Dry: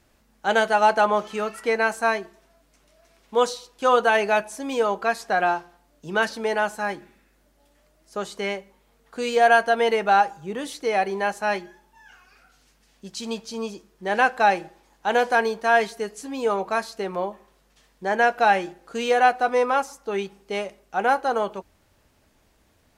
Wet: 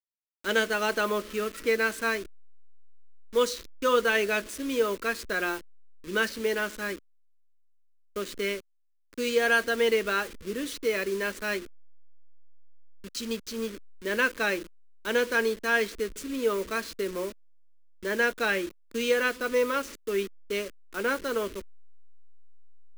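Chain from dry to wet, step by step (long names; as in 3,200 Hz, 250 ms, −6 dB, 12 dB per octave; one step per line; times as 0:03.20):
hold until the input has moved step −34.5 dBFS
phaser with its sweep stopped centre 320 Hz, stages 4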